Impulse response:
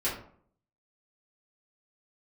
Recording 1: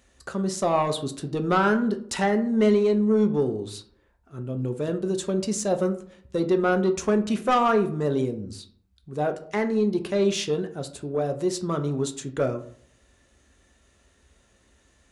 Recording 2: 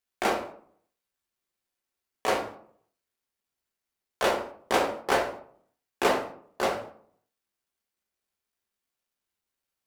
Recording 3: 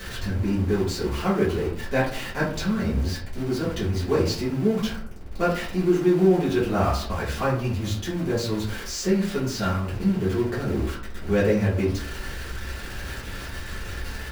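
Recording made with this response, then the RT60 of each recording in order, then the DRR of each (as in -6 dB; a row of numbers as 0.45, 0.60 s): 3; 0.55, 0.55, 0.55 s; 6.0, 0.0, -9.5 dB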